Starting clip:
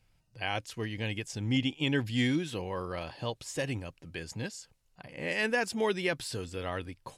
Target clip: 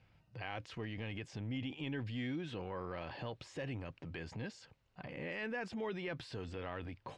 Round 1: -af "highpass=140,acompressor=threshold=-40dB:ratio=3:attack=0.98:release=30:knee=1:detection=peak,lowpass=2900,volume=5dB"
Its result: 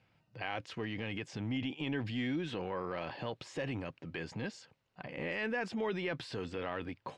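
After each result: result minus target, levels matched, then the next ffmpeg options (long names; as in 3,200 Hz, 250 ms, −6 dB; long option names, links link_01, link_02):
downward compressor: peak gain reduction −5 dB; 125 Hz band −3.0 dB
-af "highpass=140,acompressor=threshold=-47.5dB:ratio=3:attack=0.98:release=30:knee=1:detection=peak,lowpass=2900,volume=5dB"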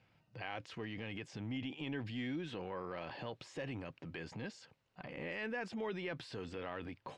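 125 Hz band −3.0 dB
-af "highpass=61,acompressor=threshold=-47.5dB:ratio=3:attack=0.98:release=30:knee=1:detection=peak,lowpass=2900,volume=5dB"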